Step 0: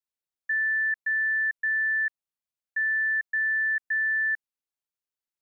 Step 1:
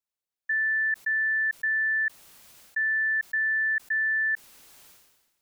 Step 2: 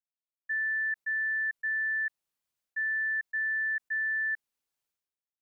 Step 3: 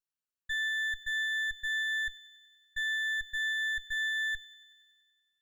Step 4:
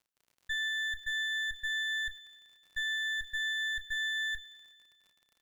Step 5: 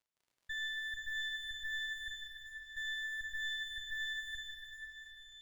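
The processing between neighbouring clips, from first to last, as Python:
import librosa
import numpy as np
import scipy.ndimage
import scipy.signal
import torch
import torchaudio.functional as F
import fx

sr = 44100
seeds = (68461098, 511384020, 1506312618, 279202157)

y1 = fx.sustainer(x, sr, db_per_s=49.0)
y2 = fx.upward_expand(y1, sr, threshold_db=-45.0, expansion=2.5)
y2 = y2 * 10.0 ** (-4.0 / 20.0)
y3 = fx.lower_of_two(y2, sr, delay_ms=0.71)
y3 = fx.echo_wet_highpass(y3, sr, ms=94, feedback_pct=71, hz=1700.0, wet_db=-14)
y4 = fx.dmg_crackle(y3, sr, seeds[0], per_s=59.0, level_db=-51.0)
y4 = fx.doubler(y4, sr, ms=31.0, db=-12.0)
y5 = scipy.ndimage.median_filter(y4, 3, mode='constant')
y5 = fx.rev_plate(y5, sr, seeds[1], rt60_s=5.0, hf_ratio=0.9, predelay_ms=0, drr_db=-0.5)
y5 = y5 * 10.0 ** (-6.5 / 20.0)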